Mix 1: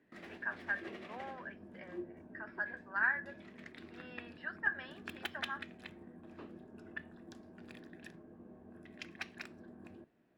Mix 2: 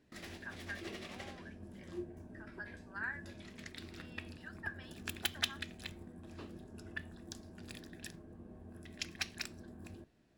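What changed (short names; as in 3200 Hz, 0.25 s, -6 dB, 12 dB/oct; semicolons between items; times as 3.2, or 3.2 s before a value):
speech -10.0 dB; master: remove three-band isolator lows -15 dB, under 150 Hz, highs -16 dB, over 2700 Hz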